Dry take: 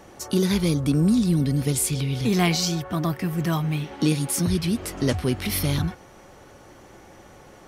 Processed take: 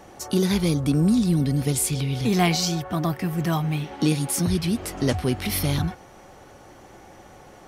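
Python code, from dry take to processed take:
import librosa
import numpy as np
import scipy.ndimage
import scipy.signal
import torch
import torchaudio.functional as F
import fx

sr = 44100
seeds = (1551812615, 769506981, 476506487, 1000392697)

y = fx.peak_eq(x, sr, hz=760.0, db=5.0, octaves=0.29)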